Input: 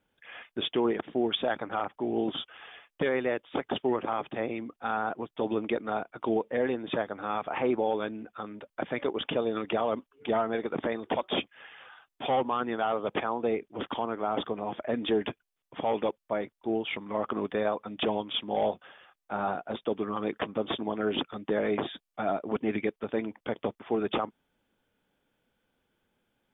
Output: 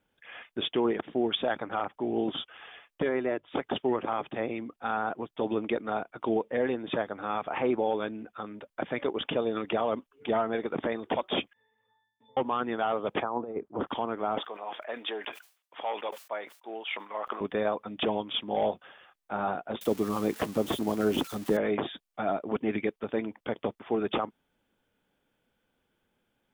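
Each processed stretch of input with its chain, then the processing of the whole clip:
3.02–3.48 high shelf 2700 Hz -12 dB + notches 50/100/150 Hz + comb 3 ms, depth 35%
11.53–12.37 octave resonator A, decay 0.5 s + three-band squash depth 70%
13.22–13.87 HPF 42 Hz + resonant high shelf 1700 Hz -13 dB, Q 1.5 + negative-ratio compressor -31 dBFS, ratio -0.5
14.38–17.41 HPF 740 Hz + sustainer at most 140 dB/s
19.81–21.57 switching spikes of -27.5 dBFS + tilt -2 dB/oct
whole clip: dry

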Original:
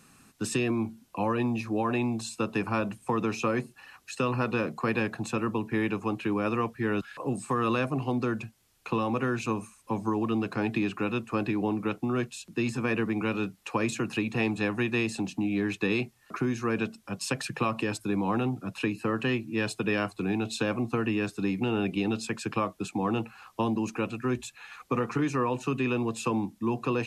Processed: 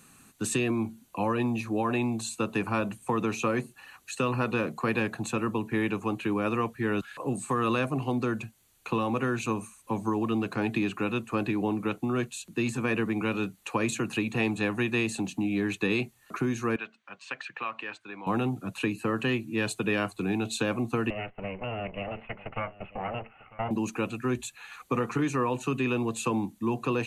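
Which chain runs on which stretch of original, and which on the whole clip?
16.76–18.27 band-pass 1900 Hz, Q 1 + air absorption 110 m
21.1–23.71 minimum comb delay 1.5 ms + rippled Chebyshev low-pass 3000 Hz, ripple 6 dB + echo 0.946 s -19.5 dB
whole clip: high shelf 5200 Hz +5.5 dB; notch 5200 Hz, Q 5.1

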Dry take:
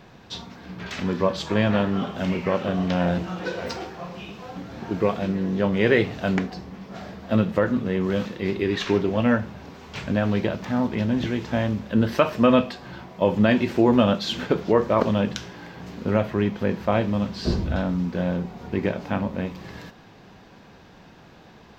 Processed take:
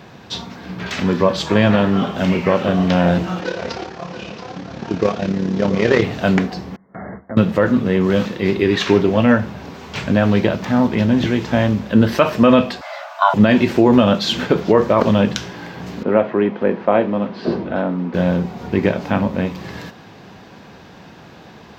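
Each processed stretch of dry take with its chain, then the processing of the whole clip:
3.4–6.03 CVSD 32 kbps + AM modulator 35 Hz, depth 45% + echo 0.678 s -11.5 dB
6.76–7.37 compressor 4:1, threshold -34 dBFS + brick-wall FIR low-pass 2200 Hz + gate with hold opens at -30 dBFS, closes at -37 dBFS
12.81–13.34 doubler 13 ms -11 dB + frequency shift +490 Hz
16.03–18.14 BPF 310–2600 Hz + tilt shelf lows +3.5 dB, about 810 Hz
whole clip: HPF 71 Hz; maximiser +9 dB; gain -1 dB

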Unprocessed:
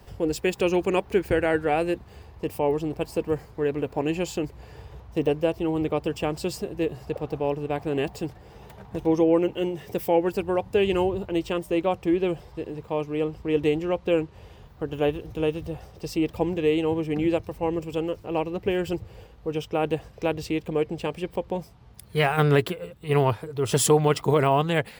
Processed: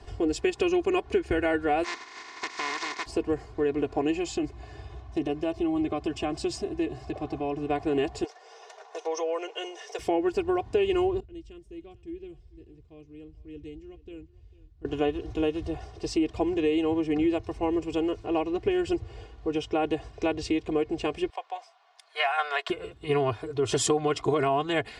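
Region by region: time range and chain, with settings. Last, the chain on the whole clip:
1.83–3.05 spectral contrast lowered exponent 0.2 + speaker cabinet 280–6100 Hz, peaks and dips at 620 Hz -6 dB, 1000 Hz +10 dB, 2000 Hz +10 dB, 3000 Hz -5 dB + compressor 5:1, threshold -30 dBFS
4.16–7.69 compressor 2:1, threshold -26 dBFS + notch comb 470 Hz
8.24–9.99 bell 5900 Hz +10.5 dB 0.49 oct + compressor 2:1, threshold -22 dBFS + elliptic high-pass 470 Hz, stop band 60 dB
11.2–14.85 passive tone stack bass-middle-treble 10-0-1 + echo 0.448 s -20 dB
21.3–22.7 steep high-pass 630 Hz + high shelf 7800 Hz -11 dB
whole clip: LPF 7900 Hz 24 dB/oct; comb 2.8 ms, depth 77%; compressor 3:1, threshold -23 dBFS

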